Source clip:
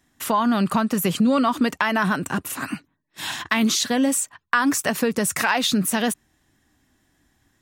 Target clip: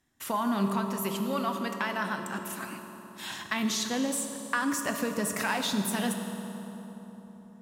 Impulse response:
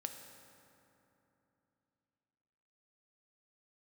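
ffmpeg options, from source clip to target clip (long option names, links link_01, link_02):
-filter_complex "[0:a]asettb=1/sr,asplit=3[link_01][link_02][link_03];[link_01]atrim=end=0.724[link_04];[link_02]atrim=start=0.72:end=3.3,asetpts=PTS-STARTPTS,afade=type=in:duration=0.004:curve=qsin,afade=type=out:start_time=2.576:duration=0.004:curve=qsin,lowshelf=frequency=330:gain=-10[link_05];[link_03]atrim=start=3.296[link_06];[link_04][link_05]acrossfade=duration=0.004:curve1=hsin:curve2=qsin[link_07];[link_07][link_06]acrossfade=duration=0.004:curve1=qsin:curve2=hsin[link_08];[1:a]atrim=start_sample=2205,asetrate=31311,aresample=44100[link_09];[link_08][link_09]afir=irnorm=-1:irlink=0,volume=-8dB"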